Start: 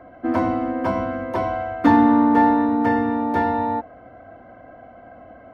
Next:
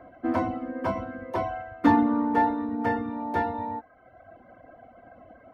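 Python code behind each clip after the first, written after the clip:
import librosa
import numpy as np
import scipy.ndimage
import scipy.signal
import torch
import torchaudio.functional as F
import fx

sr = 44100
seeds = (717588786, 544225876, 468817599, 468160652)

y = fx.dereverb_blind(x, sr, rt60_s=1.1)
y = y * 10.0 ** (-4.0 / 20.0)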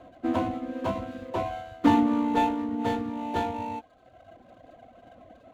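y = scipy.signal.medfilt(x, 25)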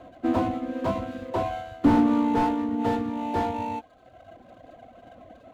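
y = fx.slew_limit(x, sr, full_power_hz=50.0)
y = y * 10.0 ** (3.0 / 20.0)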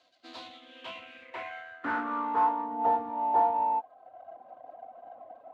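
y = fx.filter_sweep_bandpass(x, sr, from_hz=4700.0, to_hz=820.0, start_s=0.16, end_s=2.83, q=4.2)
y = y * 10.0 ** (7.0 / 20.0)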